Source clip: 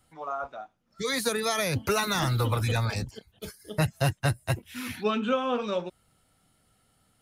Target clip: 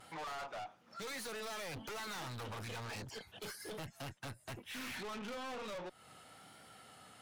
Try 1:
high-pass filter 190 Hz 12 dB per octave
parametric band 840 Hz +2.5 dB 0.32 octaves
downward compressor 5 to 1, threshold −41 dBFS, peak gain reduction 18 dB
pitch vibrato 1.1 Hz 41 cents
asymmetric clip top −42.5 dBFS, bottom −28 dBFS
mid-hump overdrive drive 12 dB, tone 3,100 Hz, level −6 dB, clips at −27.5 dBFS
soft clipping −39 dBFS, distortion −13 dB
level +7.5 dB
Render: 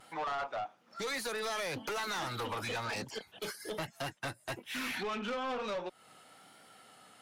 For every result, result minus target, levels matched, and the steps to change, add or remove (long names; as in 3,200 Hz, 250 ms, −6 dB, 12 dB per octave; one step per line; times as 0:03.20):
125 Hz band −5.0 dB; soft clipping: distortion −8 dB; asymmetric clip: distortion −4 dB
change: high-pass filter 92 Hz 12 dB per octave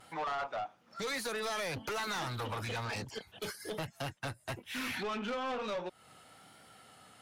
soft clipping: distortion −8 dB; asymmetric clip: distortion −4 dB
change: soft clipping −49.5 dBFS, distortion −6 dB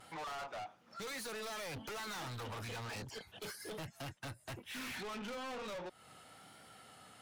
asymmetric clip: distortion −4 dB
change: asymmetric clip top −49 dBFS, bottom −28 dBFS